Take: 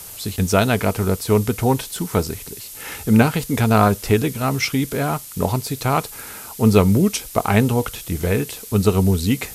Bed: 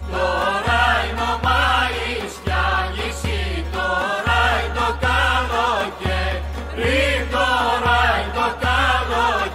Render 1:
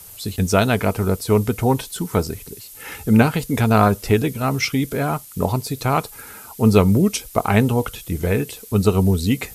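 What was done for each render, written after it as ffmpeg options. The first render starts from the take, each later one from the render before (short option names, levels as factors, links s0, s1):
-af "afftdn=nr=7:nf=-37"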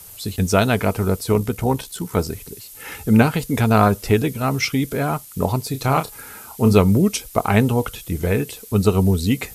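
-filter_complex "[0:a]asettb=1/sr,asplit=3[s0][s1][s2];[s0]atrim=end=1.324[s3];[s1]atrim=start=1.32:end=2.18,asetpts=PTS-STARTPTS,afade=t=in:d=0.004:c=qsin,afade=t=out:st=0.856:d=0.004:c=qsin,tremolo=f=66:d=0.462[s4];[s2]atrim=start=2.176[s5];[s3][s4]acrossfade=d=0.004:c1=hsin:c2=qsin[s6];[s6][s5]acrossfade=d=0.004:c1=qsin:c2=hsin,asettb=1/sr,asplit=3[s7][s8][s9];[s7]atrim=end=5.714[s10];[s8]atrim=start=5.71:end=6.73,asetpts=PTS-STARTPTS,afade=t=in:d=0.004:c=qsin,afade=t=out:st=1.016:d=0.004:c=qsin,asplit=2[s11][s12];[s12]adelay=30,volume=0.376[s13];[s11][s13]amix=inputs=2:normalize=0,atrim=end_sample=44982[s14];[s9]atrim=start=6.726[s15];[s10][s14]acrossfade=d=0.004:c1=hsin:c2=qsin[s16];[s16][s15]acrossfade=d=0.004:c1=qsin:c2=hsin"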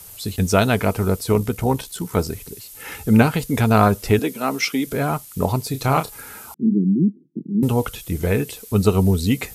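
-filter_complex "[0:a]asettb=1/sr,asplit=3[s0][s1][s2];[s0]atrim=end=4.194[s3];[s1]atrim=start=4.19:end=4.87,asetpts=PTS-STARTPTS,afade=t=in:d=0.004:c=qsin,afade=t=out:st=0.676:d=0.004:c=qsin,highpass=f=210:w=0.5412,highpass=f=210:w=1.3066[s4];[s2]atrim=start=4.866[s5];[s3][s4]acrossfade=d=0.004:c1=hsin:c2=qsin[s6];[s6][s5]acrossfade=d=0.004:c1=qsin:c2=hsin,asettb=1/sr,asplit=3[s7][s8][s9];[s7]atrim=end=6.544[s10];[s8]atrim=start=6.54:end=7.63,asetpts=PTS-STARTPTS,afade=t=in:d=0.004:c=qsin,afade=t=out:st=1.086:d=0.004:c=qsin,asuperpass=centerf=230:order=12:qfactor=1.1[s11];[s9]atrim=start=7.626[s12];[s10][s11]acrossfade=d=0.004:c1=hsin:c2=qsin[s13];[s13][s12]acrossfade=d=0.004:c1=qsin:c2=hsin"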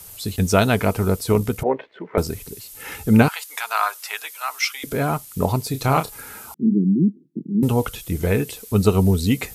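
-filter_complex "[0:a]asettb=1/sr,asplit=3[s0][s1][s2];[s0]atrim=end=1.634[s3];[s1]atrim=start=1.63:end=2.18,asetpts=PTS-STARTPTS,afade=t=in:d=0.004:c=qsin,afade=t=out:st=0.546:d=0.004:c=qsin,highpass=370,equalizer=f=390:t=q:w=4:g=4,equalizer=f=590:t=q:w=4:g=8,equalizer=f=880:t=q:w=4:g=-4,equalizer=f=1300:t=q:w=4:g=-4,equalizer=f=2000:t=q:w=4:g=6,lowpass=f=2200:w=0.5412,lowpass=f=2200:w=1.3066[s4];[s2]atrim=start=2.176[s5];[s3][s4]acrossfade=d=0.004:c1=hsin:c2=qsin[s6];[s6][s5]acrossfade=d=0.004:c1=qsin:c2=hsin,asettb=1/sr,asplit=3[s7][s8][s9];[s7]atrim=end=3.284[s10];[s8]atrim=start=3.28:end=4.84,asetpts=PTS-STARTPTS,afade=t=in:d=0.004:c=qsin,afade=t=out:st=1.556:d=0.004:c=qsin,highpass=f=940:w=0.5412,highpass=f=940:w=1.3066[s11];[s9]atrim=start=4.836[s12];[s10][s11]acrossfade=d=0.004:c1=hsin:c2=qsin[s13];[s13][s12]acrossfade=d=0.004:c1=qsin:c2=hsin"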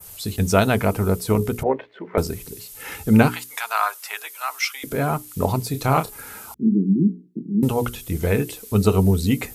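-af "bandreject=f=60:t=h:w=6,bandreject=f=120:t=h:w=6,bandreject=f=180:t=h:w=6,bandreject=f=240:t=h:w=6,bandreject=f=300:t=h:w=6,bandreject=f=360:t=h:w=6,bandreject=f=420:t=h:w=6,adynamicequalizer=threshold=0.0112:dfrequency=4300:dqfactor=0.76:tfrequency=4300:tqfactor=0.76:attack=5:release=100:ratio=0.375:range=2.5:mode=cutabove:tftype=bell"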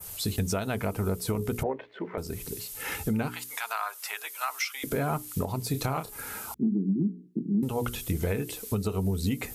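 -af "acompressor=threshold=0.0708:ratio=6,alimiter=limit=0.119:level=0:latency=1:release=350"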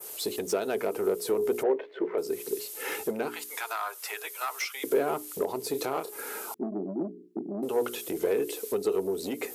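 -af "asoftclip=type=tanh:threshold=0.0596,highpass=f=390:t=q:w=3.5"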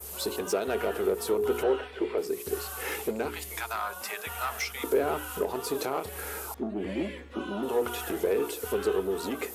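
-filter_complex "[1:a]volume=0.0668[s0];[0:a][s0]amix=inputs=2:normalize=0"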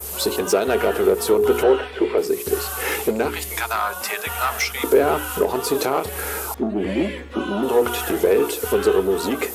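-af "volume=3.16"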